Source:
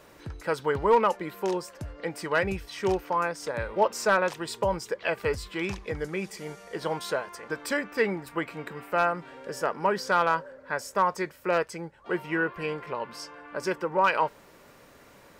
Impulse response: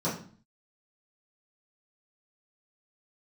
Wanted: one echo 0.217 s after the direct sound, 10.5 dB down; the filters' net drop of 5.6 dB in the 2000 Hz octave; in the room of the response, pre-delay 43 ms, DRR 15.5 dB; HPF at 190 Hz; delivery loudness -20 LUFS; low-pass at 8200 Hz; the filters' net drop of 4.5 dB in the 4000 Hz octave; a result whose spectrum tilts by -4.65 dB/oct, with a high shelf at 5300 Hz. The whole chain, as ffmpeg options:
-filter_complex "[0:a]highpass=190,lowpass=8.2k,equalizer=f=2k:t=o:g=-7.5,equalizer=f=4k:t=o:g=-6.5,highshelf=f=5.3k:g=5.5,aecho=1:1:217:0.299,asplit=2[a][b];[1:a]atrim=start_sample=2205,adelay=43[c];[b][c]afir=irnorm=-1:irlink=0,volume=-24.5dB[d];[a][d]amix=inputs=2:normalize=0,volume=9.5dB"

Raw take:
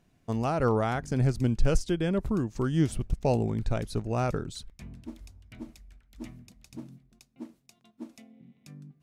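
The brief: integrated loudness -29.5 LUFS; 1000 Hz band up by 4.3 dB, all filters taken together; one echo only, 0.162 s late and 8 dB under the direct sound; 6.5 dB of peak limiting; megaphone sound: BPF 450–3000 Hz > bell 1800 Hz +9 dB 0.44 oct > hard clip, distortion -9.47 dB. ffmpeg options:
-af "equalizer=f=1k:t=o:g=5.5,alimiter=limit=-17.5dB:level=0:latency=1,highpass=450,lowpass=3k,equalizer=f=1.8k:t=o:w=0.44:g=9,aecho=1:1:162:0.398,asoftclip=type=hard:threshold=-26.5dB,volume=6dB"

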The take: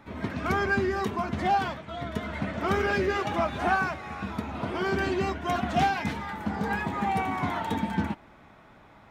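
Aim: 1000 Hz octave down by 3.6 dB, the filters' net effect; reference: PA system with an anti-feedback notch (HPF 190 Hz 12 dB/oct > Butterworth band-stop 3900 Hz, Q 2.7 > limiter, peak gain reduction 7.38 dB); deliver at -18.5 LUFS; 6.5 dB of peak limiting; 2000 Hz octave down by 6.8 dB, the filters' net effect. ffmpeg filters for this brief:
-af "equalizer=f=1k:t=o:g=-3.5,equalizer=f=2k:t=o:g=-8,alimiter=limit=-22.5dB:level=0:latency=1,highpass=190,asuperstop=centerf=3900:order=8:qfactor=2.7,volume=18.5dB,alimiter=limit=-9.5dB:level=0:latency=1"

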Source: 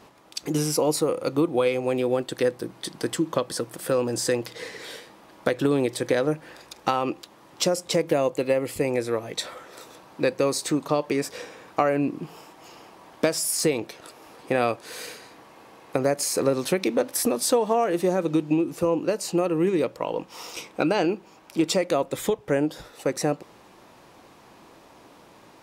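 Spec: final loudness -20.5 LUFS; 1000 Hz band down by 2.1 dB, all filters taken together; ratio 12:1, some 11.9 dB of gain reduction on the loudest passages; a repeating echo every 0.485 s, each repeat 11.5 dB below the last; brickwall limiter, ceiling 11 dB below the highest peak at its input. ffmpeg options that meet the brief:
-af "equalizer=f=1k:t=o:g=-3,acompressor=threshold=-30dB:ratio=12,alimiter=level_in=2.5dB:limit=-24dB:level=0:latency=1,volume=-2.5dB,aecho=1:1:485|970|1455:0.266|0.0718|0.0194,volume=17dB"

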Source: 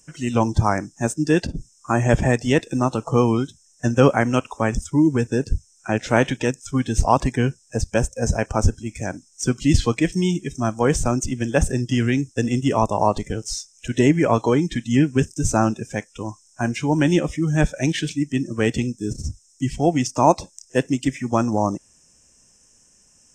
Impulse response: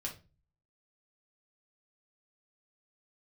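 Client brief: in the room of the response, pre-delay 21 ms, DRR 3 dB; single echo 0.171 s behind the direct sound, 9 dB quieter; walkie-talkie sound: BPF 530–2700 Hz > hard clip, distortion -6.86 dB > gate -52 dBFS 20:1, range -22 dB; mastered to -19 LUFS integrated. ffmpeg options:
-filter_complex "[0:a]aecho=1:1:171:0.355,asplit=2[a][b];[1:a]atrim=start_sample=2205,adelay=21[c];[b][c]afir=irnorm=-1:irlink=0,volume=-2.5dB[d];[a][d]amix=inputs=2:normalize=0,highpass=530,lowpass=2.7k,asoftclip=type=hard:threshold=-20.5dB,agate=range=-22dB:threshold=-52dB:ratio=20,volume=9dB"

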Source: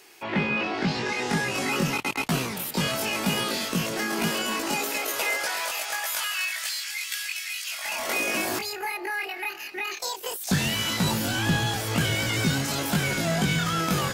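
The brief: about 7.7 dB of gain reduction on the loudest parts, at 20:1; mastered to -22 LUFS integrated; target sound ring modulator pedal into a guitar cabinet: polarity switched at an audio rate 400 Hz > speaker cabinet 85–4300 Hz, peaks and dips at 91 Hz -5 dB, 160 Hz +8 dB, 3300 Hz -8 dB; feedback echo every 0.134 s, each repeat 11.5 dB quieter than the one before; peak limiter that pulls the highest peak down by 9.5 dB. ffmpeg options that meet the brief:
-af "acompressor=threshold=-27dB:ratio=20,alimiter=level_in=2.5dB:limit=-24dB:level=0:latency=1,volume=-2.5dB,aecho=1:1:134|268|402:0.266|0.0718|0.0194,aeval=exprs='val(0)*sgn(sin(2*PI*400*n/s))':c=same,highpass=85,equalizer=f=91:t=q:w=4:g=-5,equalizer=f=160:t=q:w=4:g=8,equalizer=f=3.3k:t=q:w=4:g=-8,lowpass=f=4.3k:w=0.5412,lowpass=f=4.3k:w=1.3066,volume=14dB"

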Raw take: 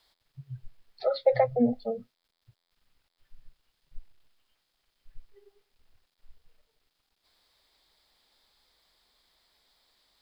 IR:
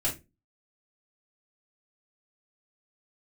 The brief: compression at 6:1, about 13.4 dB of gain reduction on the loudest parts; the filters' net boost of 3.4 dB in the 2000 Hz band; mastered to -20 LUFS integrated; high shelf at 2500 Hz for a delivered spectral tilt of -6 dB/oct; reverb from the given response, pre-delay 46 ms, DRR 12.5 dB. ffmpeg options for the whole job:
-filter_complex "[0:a]equalizer=f=2k:t=o:g=5,highshelf=f=2.5k:g=-3.5,acompressor=threshold=-33dB:ratio=6,asplit=2[a][b];[1:a]atrim=start_sample=2205,adelay=46[c];[b][c]afir=irnorm=-1:irlink=0,volume=-19dB[d];[a][d]amix=inputs=2:normalize=0,volume=20dB"

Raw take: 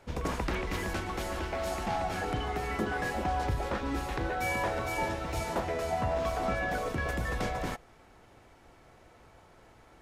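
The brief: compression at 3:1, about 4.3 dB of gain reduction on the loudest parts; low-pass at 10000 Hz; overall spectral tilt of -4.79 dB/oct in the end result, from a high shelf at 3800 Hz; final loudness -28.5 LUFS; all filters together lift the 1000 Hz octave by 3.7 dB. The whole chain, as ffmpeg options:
-af "lowpass=10k,equalizer=f=1k:t=o:g=5,highshelf=f=3.8k:g=3.5,acompressor=threshold=-30dB:ratio=3,volume=5dB"

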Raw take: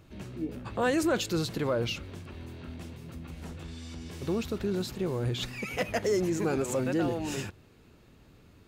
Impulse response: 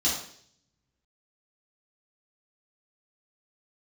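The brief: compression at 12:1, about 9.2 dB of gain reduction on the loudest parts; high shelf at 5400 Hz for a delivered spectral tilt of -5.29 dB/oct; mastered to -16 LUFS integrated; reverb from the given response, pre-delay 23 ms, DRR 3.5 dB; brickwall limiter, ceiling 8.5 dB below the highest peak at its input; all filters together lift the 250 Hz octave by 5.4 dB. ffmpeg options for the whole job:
-filter_complex "[0:a]equalizer=f=250:t=o:g=7.5,highshelf=f=5.4k:g=4,acompressor=threshold=-29dB:ratio=12,alimiter=level_in=4.5dB:limit=-24dB:level=0:latency=1,volume=-4.5dB,asplit=2[a][b];[1:a]atrim=start_sample=2205,adelay=23[c];[b][c]afir=irnorm=-1:irlink=0,volume=-13.5dB[d];[a][d]amix=inputs=2:normalize=0,volume=18.5dB"

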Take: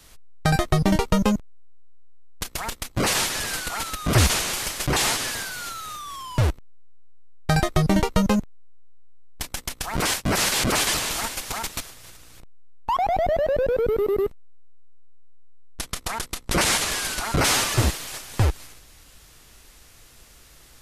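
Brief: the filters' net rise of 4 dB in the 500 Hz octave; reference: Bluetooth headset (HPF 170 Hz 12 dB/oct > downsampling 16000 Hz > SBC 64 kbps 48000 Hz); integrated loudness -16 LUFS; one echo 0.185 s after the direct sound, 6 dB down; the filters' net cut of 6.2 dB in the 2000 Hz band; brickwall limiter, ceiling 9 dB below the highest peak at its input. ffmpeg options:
-af "equalizer=f=500:t=o:g=5.5,equalizer=f=2k:t=o:g=-8.5,alimiter=limit=-13.5dB:level=0:latency=1,highpass=170,aecho=1:1:185:0.501,aresample=16000,aresample=44100,volume=9dB" -ar 48000 -c:a sbc -b:a 64k

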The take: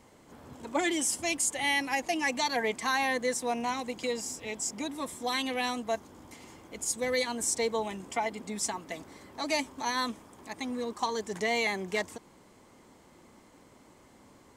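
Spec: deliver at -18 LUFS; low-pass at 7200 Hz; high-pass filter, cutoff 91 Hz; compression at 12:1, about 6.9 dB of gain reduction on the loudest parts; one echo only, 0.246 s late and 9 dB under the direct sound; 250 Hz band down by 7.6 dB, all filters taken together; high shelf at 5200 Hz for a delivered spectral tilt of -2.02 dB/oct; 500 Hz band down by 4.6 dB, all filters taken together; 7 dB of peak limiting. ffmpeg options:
-af "highpass=91,lowpass=7.2k,equalizer=f=250:t=o:g=-8,equalizer=f=500:t=o:g=-3.5,highshelf=f=5.2k:g=-8.5,acompressor=threshold=-33dB:ratio=12,alimiter=level_in=6.5dB:limit=-24dB:level=0:latency=1,volume=-6.5dB,aecho=1:1:246:0.355,volume=22.5dB"

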